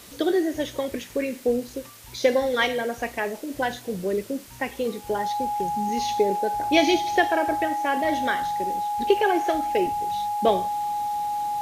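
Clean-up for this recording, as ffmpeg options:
ffmpeg -i in.wav -af "bandreject=frequency=830:width=30,afwtdn=0.005" out.wav

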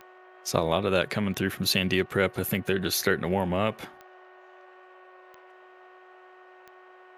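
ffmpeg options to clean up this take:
ffmpeg -i in.wav -af "adeclick=threshold=4,bandreject=frequency=369.2:width_type=h:width=4,bandreject=frequency=738.4:width_type=h:width=4,bandreject=frequency=1107.6:width_type=h:width=4,bandreject=frequency=1476.8:width_type=h:width=4,bandreject=frequency=1846:width_type=h:width=4" out.wav

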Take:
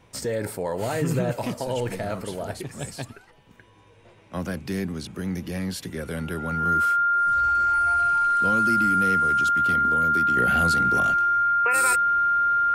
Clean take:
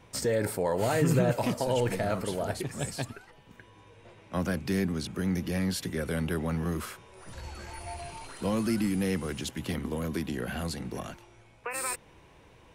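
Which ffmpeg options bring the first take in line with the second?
ffmpeg -i in.wav -af "bandreject=frequency=1400:width=30,asetnsamples=nb_out_samples=441:pad=0,asendcmd='10.37 volume volume -7dB',volume=0dB" out.wav

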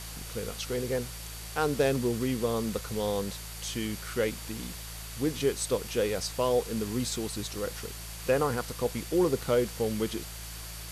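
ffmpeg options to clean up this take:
ffmpeg -i in.wav -af "adeclick=threshold=4,bandreject=frequency=55.5:width_type=h:width=4,bandreject=frequency=111:width_type=h:width=4,bandreject=frequency=166.5:width_type=h:width=4,bandreject=frequency=4600:width=30,afftdn=noise_reduction=30:noise_floor=-41" out.wav

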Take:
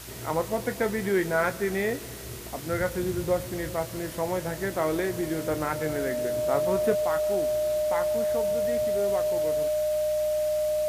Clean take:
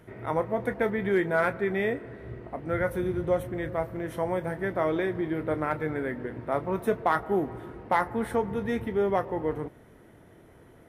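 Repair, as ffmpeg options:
ffmpeg -i in.wav -af "bandreject=frequency=60.8:width_type=h:width=4,bandreject=frequency=121.6:width_type=h:width=4,bandreject=frequency=182.4:width_type=h:width=4,bandreject=frequency=610:width=30,afwtdn=0.0079,asetnsamples=nb_out_samples=441:pad=0,asendcmd='6.95 volume volume 7.5dB',volume=0dB" out.wav

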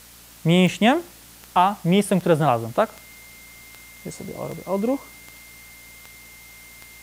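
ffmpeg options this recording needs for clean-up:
ffmpeg -i in.wav -af "adeclick=threshold=4,bandreject=frequency=57.9:width_type=h:width=4,bandreject=frequency=115.8:width_type=h:width=4,bandreject=frequency=173.7:width_type=h:width=4,bandreject=frequency=231.6:width_type=h:width=4,bandreject=frequency=289.5:width_type=h:width=4,bandreject=frequency=2100:width=30,afwtdn=0.005" out.wav

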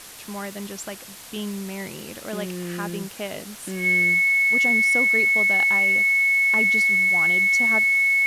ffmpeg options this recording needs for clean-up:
ffmpeg -i in.wav -af "adeclick=threshold=4,bandreject=frequency=2200:width=30,afftdn=noise_reduction=28:noise_floor=-40" out.wav

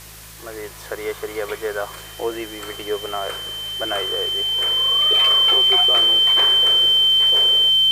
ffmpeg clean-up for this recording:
ffmpeg -i in.wav -af "adeclick=threshold=4,bandreject=frequency=53.5:width_type=h:width=4,bandreject=frequency=107:width_type=h:width=4,bandreject=frequency=160.5:width_type=h:width=4,bandreject=frequency=3100:width=30,afwtdn=0.01" out.wav

